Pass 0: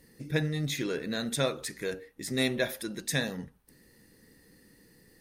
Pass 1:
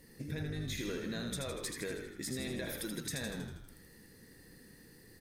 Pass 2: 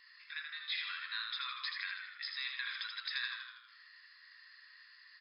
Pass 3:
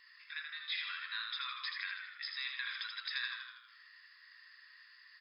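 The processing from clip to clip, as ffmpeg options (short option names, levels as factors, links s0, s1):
-filter_complex "[0:a]alimiter=limit=0.0708:level=0:latency=1:release=55,acompressor=threshold=0.0141:ratio=6,asplit=2[s0][s1];[s1]asplit=8[s2][s3][s4][s5][s6][s7][s8][s9];[s2]adelay=80,afreqshift=-50,volume=0.562[s10];[s3]adelay=160,afreqshift=-100,volume=0.32[s11];[s4]adelay=240,afreqshift=-150,volume=0.182[s12];[s5]adelay=320,afreqshift=-200,volume=0.105[s13];[s6]adelay=400,afreqshift=-250,volume=0.0596[s14];[s7]adelay=480,afreqshift=-300,volume=0.0339[s15];[s8]adelay=560,afreqshift=-350,volume=0.0193[s16];[s9]adelay=640,afreqshift=-400,volume=0.011[s17];[s10][s11][s12][s13][s14][s15][s16][s17]amix=inputs=8:normalize=0[s18];[s0][s18]amix=inputs=2:normalize=0"
-af "afftfilt=real='re*between(b*sr/4096,1000,5200)':imag='im*between(b*sr/4096,1000,5200)':win_size=4096:overlap=0.75,volume=2"
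-af "bandreject=f=4200:w=16"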